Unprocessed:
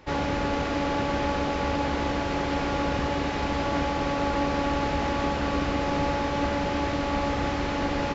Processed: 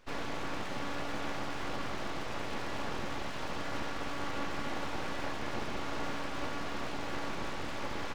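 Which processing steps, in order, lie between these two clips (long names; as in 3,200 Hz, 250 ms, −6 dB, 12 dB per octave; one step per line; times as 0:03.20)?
full-wave rectification
level −8 dB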